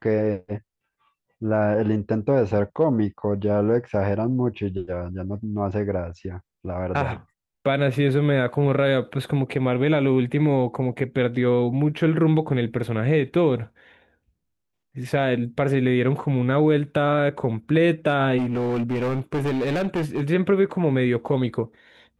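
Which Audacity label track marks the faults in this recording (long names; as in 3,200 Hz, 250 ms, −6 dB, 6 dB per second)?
18.370000	20.220000	clipping −20.5 dBFS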